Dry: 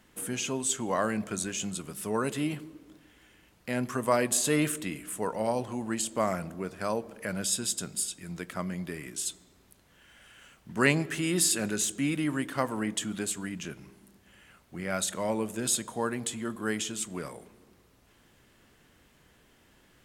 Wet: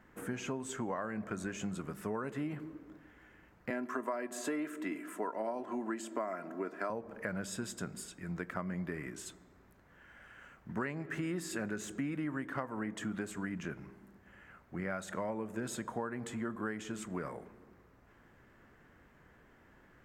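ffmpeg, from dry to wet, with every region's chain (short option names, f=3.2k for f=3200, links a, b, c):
-filter_complex "[0:a]asettb=1/sr,asplit=3[a][b][c];[a]atrim=end=3.704[d];[b]atrim=start=3.7:end=6.9,asetpts=PTS-STARTPTS,afade=t=in:d=0.004:c=qsin,afade=t=out:st=3.196:d=0.004:c=qsin,highpass=f=210:w=0.5412,highpass=f=210:w=1.3066,aecho=1:1:3:0.49,atrim=end_sample=141120[e];[c]atrim=start=6.896[f];[d][e]acrossfade=d=0.004:c1=hsin:c2=qsin[g];[g][f]acrossfade=d=0.004:c1=qsin:c2=hsin,highshelf=f=2.4k:t=q:w=1.5:g=-10.5,acompressor=threshold=-33dB:ratio=16,equalizer=f=10k:t=o:w=0.45:g=-9.5"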